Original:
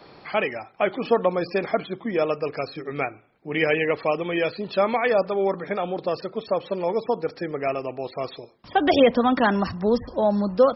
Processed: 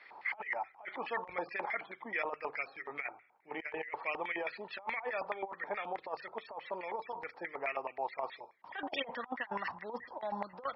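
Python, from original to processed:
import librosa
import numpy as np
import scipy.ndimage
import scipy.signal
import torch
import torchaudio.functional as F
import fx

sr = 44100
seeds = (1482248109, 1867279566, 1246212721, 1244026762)

y = fx.filter_lfo_bandpass(x, sr, shape='square', hz=4.7, low_hz=890.0, high_hz=2000.0, q=7.8)
y = fx.hum_notches(y, sr, base_hz=50, count=3)
y = fx.over_compress(y, sr, threshold_db=-41.0, ratio=-0.5)
y = y * librosa.db_to_amplitude(4.0)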